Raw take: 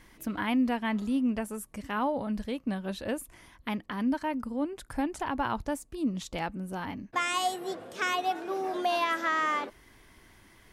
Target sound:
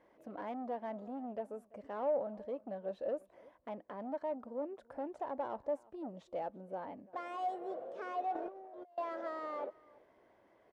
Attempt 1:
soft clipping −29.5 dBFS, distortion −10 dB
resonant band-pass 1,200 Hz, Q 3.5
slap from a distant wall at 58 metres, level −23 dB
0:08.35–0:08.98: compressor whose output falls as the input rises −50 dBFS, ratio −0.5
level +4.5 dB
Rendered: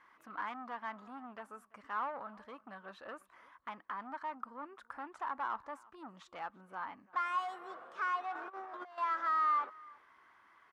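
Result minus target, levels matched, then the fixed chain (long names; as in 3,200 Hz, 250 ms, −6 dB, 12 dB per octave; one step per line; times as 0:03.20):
500 Hz band −14.5 dB
soft clipping −29.5 dBFS, distortion −10 dB
resonant band-pass 580 Hz, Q 3.5
slap from a distant wall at 58 metres, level −23 dB
0:08.35–0:08.98: compressor whose output falls as the input rises −50 dBFS, ratio −0.5
level +4.5 dB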